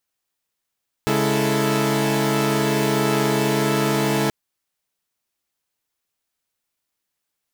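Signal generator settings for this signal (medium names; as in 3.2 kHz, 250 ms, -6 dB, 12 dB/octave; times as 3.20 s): chord C#3/G#3/E4/A4 saw, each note -21 dBFS 3.23 s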